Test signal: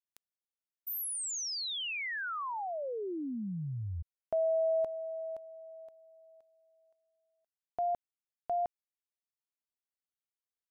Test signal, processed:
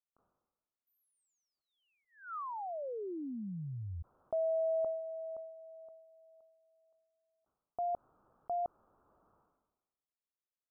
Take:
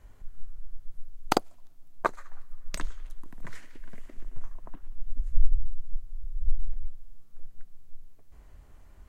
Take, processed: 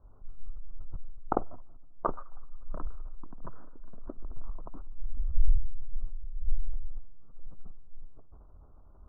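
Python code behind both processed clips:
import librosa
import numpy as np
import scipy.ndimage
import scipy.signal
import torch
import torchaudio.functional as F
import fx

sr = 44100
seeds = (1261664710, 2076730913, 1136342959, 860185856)

y = scipy.signal.sosfilt(scipy.signal.ellip(4, 1.0, 40, 1300.0, 'lowpass', fs=sr, output='sos'), x)
y = fx.sustainer(y, sr, db_per_s=51.0)
y = y * 10.0 ** (-3.0 / 20.0)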